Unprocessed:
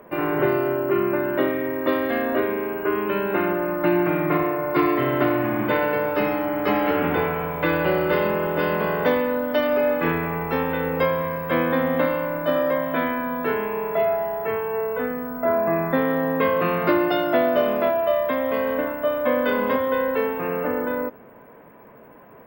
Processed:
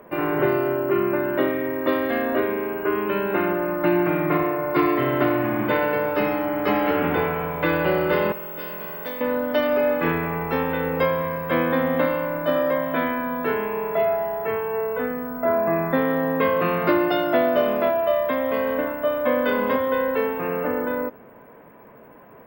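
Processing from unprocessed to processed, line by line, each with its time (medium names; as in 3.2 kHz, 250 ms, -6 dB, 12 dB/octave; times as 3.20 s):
8.32–9.21 s: pre-emphasis filter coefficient 0.8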